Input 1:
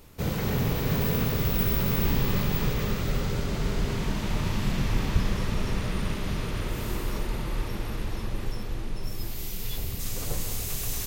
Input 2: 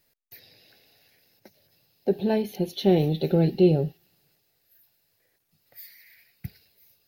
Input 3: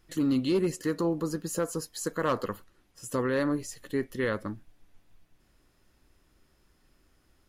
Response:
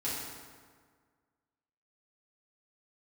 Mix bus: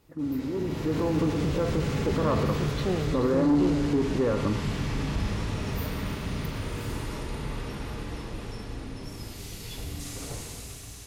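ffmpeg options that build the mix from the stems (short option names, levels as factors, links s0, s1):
-filter_complex "[0:a]lowpass=f=11000:w=0.5412,lowpass=f=11000:w=1.3066,volume=0.168,asplit=2[s0][s1];[s1]volume=0.596[s2];[1:a]volume=1.41,afade=t=out:st=0.86:d=0.46:silence=0.251189,afade=t=in:st=4.81:d=0.52:silence=0.354813[s3];[2:a]lowpass=f=1200:w=0.5412,lowpass=f=1200:w=1.3066,volume=1.12,asplit=2[s4][s5];[s5]volume=0.119[s6];[s0][s4]amix=inputs=2:normalize=0,alimiter=level_in=1.68:limit=0.0631:level=0:latency=1,volume=0.596,volume=1[s7];[3:a]atrim=start_sample=2205[s8];[s2][s6]amix=inputs=2:normalize=0[s9];[s9][s8]afir=irnorm=-1:irlink=0[s10];[s3][s7][s10]amix=inputs=3:normalize=0,highpass=43,dynaudnorm=f=190:g=9:m=3.16,asoftclip=type=tanh:threshold=0.15"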